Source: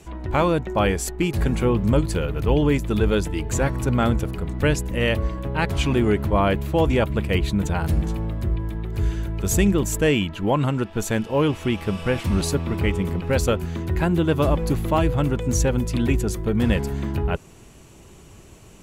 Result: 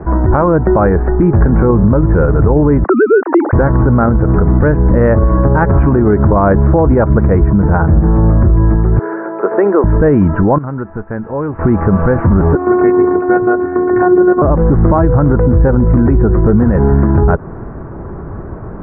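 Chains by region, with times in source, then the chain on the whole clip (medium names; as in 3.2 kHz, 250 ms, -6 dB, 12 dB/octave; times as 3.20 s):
2.84–3.53 s: formants replaced by sine waves + high-pass 320 Hz 24 dB/octave
8.99–9.84 s: high-pass 400 Hz 24 dB/octave + distance through air 230 m
10.58–11.59 s: pre-emphasis filter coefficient 0.8 + compression 2:1, threshold -40 dBFS
12.55–14.42 s: robot voice 360 Hz + band-pass 190–2700 Hz
whole clip: steep low-pass 1.6 kHz 48 dB/octave; compression 5:1, threshold -23 dBFS; loudness maximiser +22.5 dB; trim -1 dB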